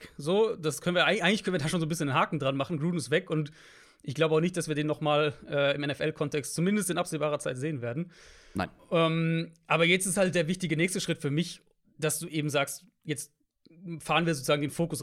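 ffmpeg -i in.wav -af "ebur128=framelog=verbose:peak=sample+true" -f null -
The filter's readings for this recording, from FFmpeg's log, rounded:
Integrated loudness:
  I:         -28.6 LUFS
  Threshold: -39.1 LUFS
Loudness range:
  LRA:         3.9 LU
  Threshold: -49.3 LUFS
  LRA low:   -31.5 LUFS
  LRA high:  -27.6 LUFS
Sample peak:
  Peak:      -10.6 dBFS
True peak:
  Peak:      -10.5 dBFS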